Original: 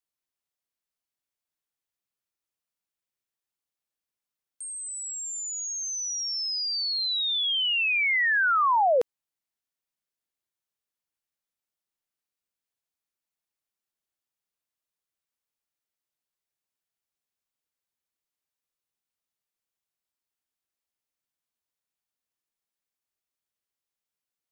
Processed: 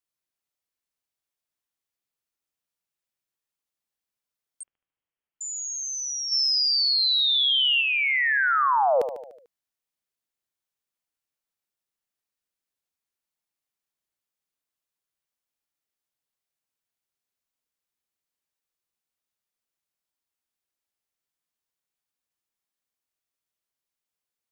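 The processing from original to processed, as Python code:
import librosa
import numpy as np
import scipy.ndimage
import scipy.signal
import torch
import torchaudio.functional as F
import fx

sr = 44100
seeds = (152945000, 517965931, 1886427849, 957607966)

p1 = x + fx.echo_feedback(x, sr, ms=74, feedback_pct=55, wet_db=-9.5, dry=0)
p2 = fx.freq_invert(p1, sr, carrier_hz=3300, at=(4.63, 5.41))
y = fx.env_flatten(p2, sr, amount_pct=70, at=(6.31, 7.8), fade=0.02)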